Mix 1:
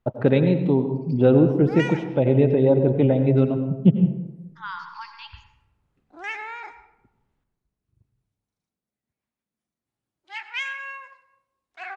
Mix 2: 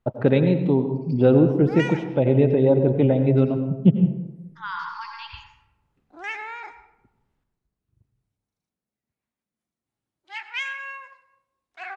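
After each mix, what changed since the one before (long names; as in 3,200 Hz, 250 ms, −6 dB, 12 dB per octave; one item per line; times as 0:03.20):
second voice: send +8.0 dB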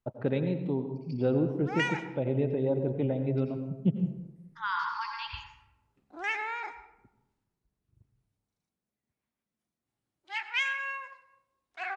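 first voice −11.0 dB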